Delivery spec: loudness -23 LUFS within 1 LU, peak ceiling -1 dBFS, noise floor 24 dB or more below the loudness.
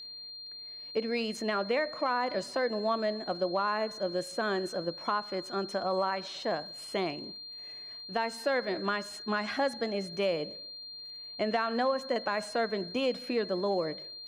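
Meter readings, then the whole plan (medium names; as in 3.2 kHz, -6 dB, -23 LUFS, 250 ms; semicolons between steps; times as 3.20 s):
tick rate 25 per s; steady tone 4.2 kHz; tone level -42 dBFS; loudness -32.5 LUFS; peak level -18.0 dBFS; loudness target -23.0 LUFS
-> de-click; band-stop 4.2 kHz, Q 30; trim +9.5 dB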